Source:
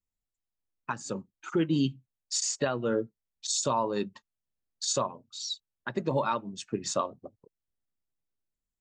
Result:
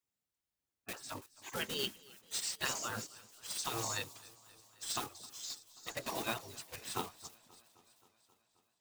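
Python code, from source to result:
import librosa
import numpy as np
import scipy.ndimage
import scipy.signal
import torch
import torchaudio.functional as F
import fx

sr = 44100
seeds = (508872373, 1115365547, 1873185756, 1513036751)

y = fx.block_float(x, sr, bits=5)
y = fx.echo_wet_highpass(y, sr, ms=332, feedback_pct=50, hz=5000.0, wet_db=-12.0)
y = fx.spec_gate(y, sr, threshold_db=-15, keep='weak')
y = fx.echo_warbled(y, sr, ms=265, feedback_pct=70, rate_hz=2.8, cents=67, wet_db=-23.0)
y = F.gain(torch.from_numpy(y), 2.5).numpy()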